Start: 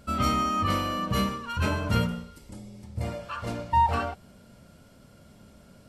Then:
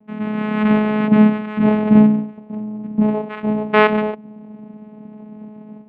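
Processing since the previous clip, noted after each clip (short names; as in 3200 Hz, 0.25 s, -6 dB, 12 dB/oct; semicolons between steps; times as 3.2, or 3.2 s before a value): LPF 1000 Hz 24 dB/oct; AGC gain up to 14 dB; vocoder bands 4, saw 213 Hz; gain +3 dB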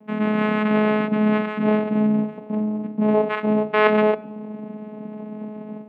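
reverse; compressor 10:1, threshold -20 dBFS, peak gain reduction 14.5 dB; reverse; HPF 210 Hz 12 dB/oct; shoebox room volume 2300 m³, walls furnished, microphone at 0.5 m; gain +6.5 dB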